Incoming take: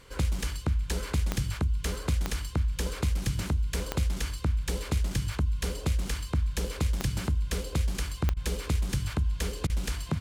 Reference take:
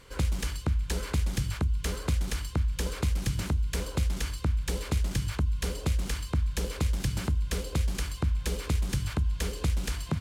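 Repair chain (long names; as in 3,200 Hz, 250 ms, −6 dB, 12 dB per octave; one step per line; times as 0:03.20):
click removal
repair the gap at 0:08.34/0:09.67, 26 ms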